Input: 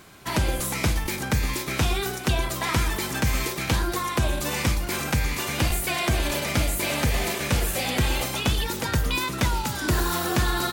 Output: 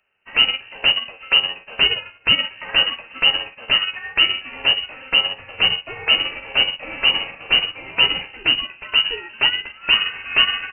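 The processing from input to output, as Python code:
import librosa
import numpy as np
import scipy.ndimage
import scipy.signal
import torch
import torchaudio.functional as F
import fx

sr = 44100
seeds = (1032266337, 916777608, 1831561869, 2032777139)

y = fx.room_early_taps(x, sr, ms=(14, 46), db=(-12.0, -12.5))
y = fx.freq_invert(y, sr, carrier_hz=2900)
y = fx.upward_expand(y, sr, threshold_db=-37.0, expansion=2.5)
y = y * 10.0 ** (7.5 / 20.0)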